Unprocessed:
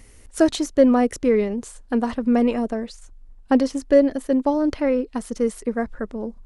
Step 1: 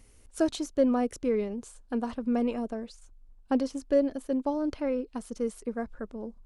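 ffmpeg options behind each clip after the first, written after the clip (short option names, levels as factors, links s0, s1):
-af "equalizer=f=1900:t=o:w=0.21:g=-7.5,volume=0.355"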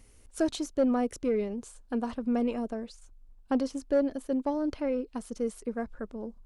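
-af "asoftclip=type=tanh:threshold=0.15"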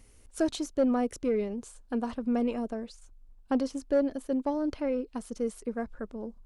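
-af anull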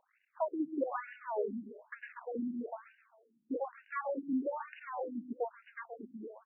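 -af "aeval=exprs='max(val(0),0)':c=same,aecho=1:1:132|264|396|528|660:0.376|0.162|0.0695|0.0299|0.0128,afftfilt=real='re*between(b*sr/1024,230*pow(2100/230,0.5+0.5*sin(2*PI*1.1*pts/sr))/1.41,230*pow(2100/230,0.5+0.5*sin(2*PI*1.1*pts/sr))*1.41)':imag='im*between(b*sr/1024,230*pow(2100/230,0.5+0.5*sin(2*PI*1.1*pts/sr))/1.41,230*pow(2100/230,0.5+0.5*sin(2*PI*1.1*pts/sr))*1.41)':win_size=1024:overlap=0.75,volume=1.5"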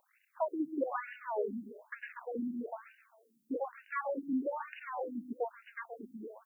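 -af "crystalizer=i=3:c=0"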